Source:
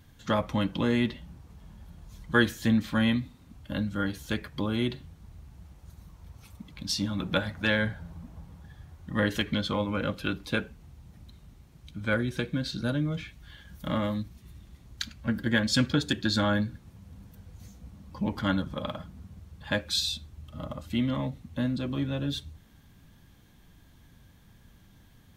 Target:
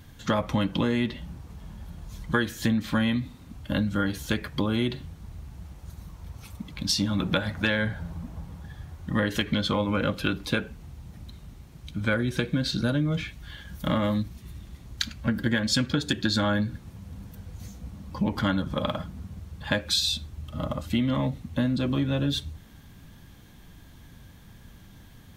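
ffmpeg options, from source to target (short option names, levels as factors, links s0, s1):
-af "acompressor=threshold=0.0398:ratio=6,volume=2.24"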